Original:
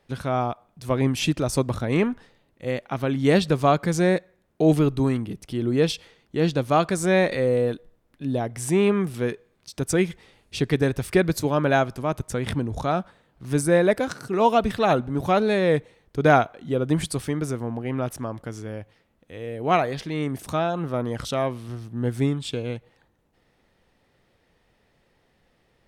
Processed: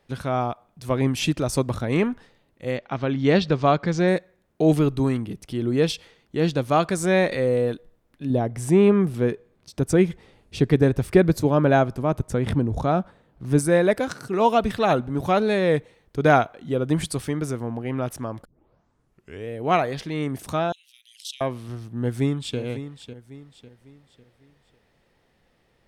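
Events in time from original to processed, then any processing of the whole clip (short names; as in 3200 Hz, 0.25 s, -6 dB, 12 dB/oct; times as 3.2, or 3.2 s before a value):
2.77–4.08 LPF 5700 Hz 24 dB/oct
8.3–13.59 tilt shelf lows +4.5 dB, about 1100 Hz
18.45 tape start 1.03 s
20.72–21.41 steep high-pass 2700 Hz 48 dB/oct
21.97–22.58 echo throw 0.55 s, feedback 40%, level -12 dB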